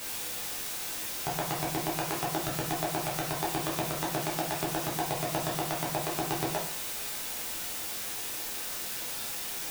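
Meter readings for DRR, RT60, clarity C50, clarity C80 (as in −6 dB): −5.0 dB, 0.50 s, 6.0 dB, 10.5 dB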